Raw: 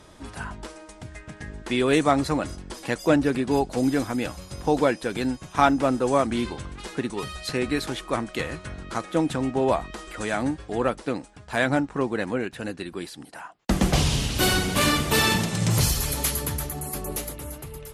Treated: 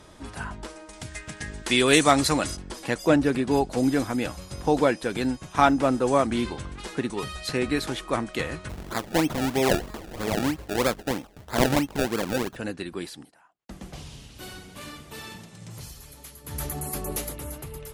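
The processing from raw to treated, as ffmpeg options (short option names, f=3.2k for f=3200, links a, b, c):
-filter_complex "[0:a]asettb=1/sr,asplit=3[a][b][c];[a]atrim=end=0.934[d];[b]atrim=start=0.93:end=2.57,asetpts=PTS-STARTPTS,afade=t=in:d=0.004:c=qsin,afade=t=out:st=1.636:d=0.004:c=qsin,highshelf=f=2.2k:g=12[e];[c]atrim=start=2.566[f];[d][e]acrossfade=d=0.004:c1=hsin:c2=qsin[g];[g][f]acrossfade=d=0.004:c1=qsin:c2=hsin,asplit=3[h][i][j];[h]afade=t=out:st=8.68:d=0.02[k];[i]acrusher=samples=29:mix=1:aa=0.000001:lfo=1:lforange=29:lforate=3.1,afade=t=in:st=8.68:d=0.02,afade=t=out:st=12.55:d=0.02[l];[j]afade=t=in:st=12.55:d=0.02[m];[k][l][m]amix=inputs=3:normalize=0,asplit=3[n][o][p];[n]atrim=end=13.35,asetpts=PTS-STARTPTS,afade=t=out:st=13.14:d=0.21:silence=0.105925[q];[o]atrim=start=13.35:end=16.44,asetpts=PTS-STARTPTS,volume=-19.5dB[r];[p]atrim=start=16.44,asetpts=PTS-STARTPTS,afade=t=in:d=0.21:silence=0.105925[s];[q][r][s]concat=n=3:v=0:a=1"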